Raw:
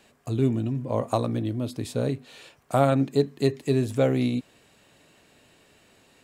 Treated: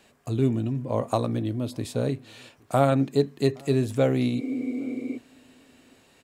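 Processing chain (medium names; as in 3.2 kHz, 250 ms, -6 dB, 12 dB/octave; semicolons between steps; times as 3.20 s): spectral replace 4.41–5.15 s, 240–2400 Hz before; echo from a far wall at 140 m, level -27 dB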